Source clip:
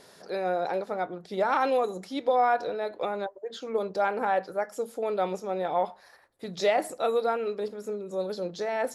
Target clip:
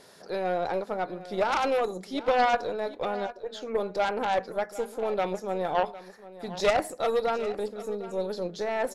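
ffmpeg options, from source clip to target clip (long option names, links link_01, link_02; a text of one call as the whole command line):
ffmpeg -i in.wav -af "aeval=exprs='0.224*(cos(1*acos(clip(val(0)/0.224,-1,1)))-cos(1*PI/2))+0.0794*(cos(4*acos(clip(val(0)/0.224,-1,1)))-cos(4*PI/2))+0.0631*(cos(6*acos(clip(val(0)/0.224,-1,1)))-cos(6*PI/2))+0.00794*(cos(8*acos(clip(val(0)/0.224,-1,1)))-cos(8*PI/2))':channel_layout=same,aecho=1:1:756:0.158" out.wav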